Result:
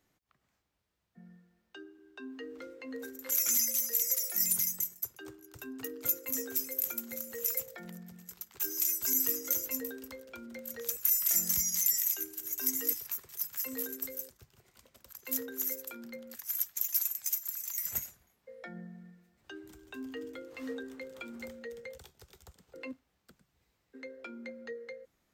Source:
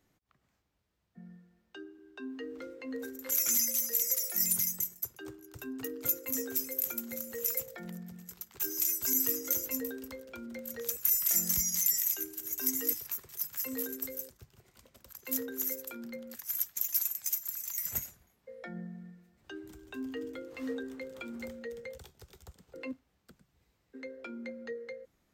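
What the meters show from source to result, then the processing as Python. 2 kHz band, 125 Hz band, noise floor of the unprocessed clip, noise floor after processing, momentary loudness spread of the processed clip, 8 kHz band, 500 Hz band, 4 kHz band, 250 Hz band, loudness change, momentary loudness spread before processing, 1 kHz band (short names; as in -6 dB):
0.0 dB, -4.0 dB, -75 dBFS, -78 dBFS, 21 LU, 0.0 dB, -2.0 dB, 0.0 dB, -3.5 dB, +0.5 dB, 20 LU, -0.5 dB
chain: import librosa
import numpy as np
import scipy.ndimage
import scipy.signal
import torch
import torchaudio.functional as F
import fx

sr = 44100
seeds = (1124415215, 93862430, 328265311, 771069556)

y = fx.low_shelf(x, sr, hz=450.0, db=-4.5)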